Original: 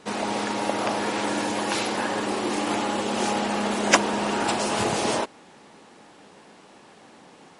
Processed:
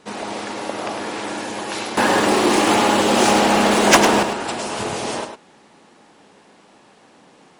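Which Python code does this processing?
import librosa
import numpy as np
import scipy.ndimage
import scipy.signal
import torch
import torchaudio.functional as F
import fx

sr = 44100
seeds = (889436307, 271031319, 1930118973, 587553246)

y = fx.leveller(x, sr, passes=3, at=(1.97, 4.23))
y = y + 10.0 ** (-8.0 / 20.0) * np.pad(y, (int(103 * sr / 1000.0), 0))[:len(y)]
y = y * librosa.db_to_amplitude(-1.0)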